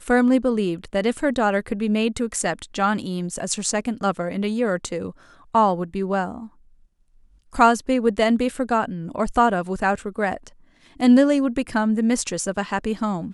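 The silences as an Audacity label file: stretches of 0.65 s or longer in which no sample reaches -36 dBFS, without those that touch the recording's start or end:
6.470000	7.530000	silence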